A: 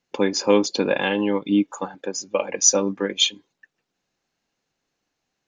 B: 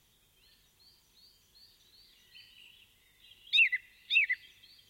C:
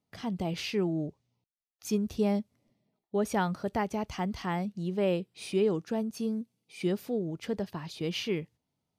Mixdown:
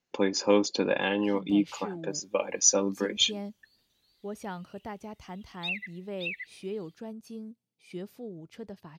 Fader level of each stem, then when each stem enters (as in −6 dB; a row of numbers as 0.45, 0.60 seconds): −5.5, −9.0, −9.5 decibels; 0.00, 2.10, 1.10 seconds